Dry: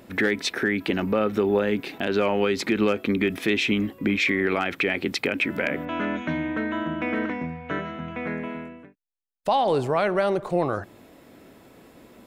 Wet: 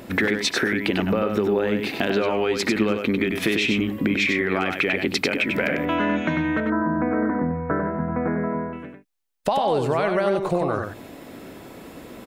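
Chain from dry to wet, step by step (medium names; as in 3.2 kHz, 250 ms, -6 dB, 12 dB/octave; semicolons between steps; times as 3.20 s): 6.60–8.73 s: inverse Chebyshev low-pass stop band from 3 kHz, stop band 40 dB; compression, threshold -28 dBFS, peak gain reduction 10.5 dB; delay 96 ms -5.5 dB; trim +8.5 dB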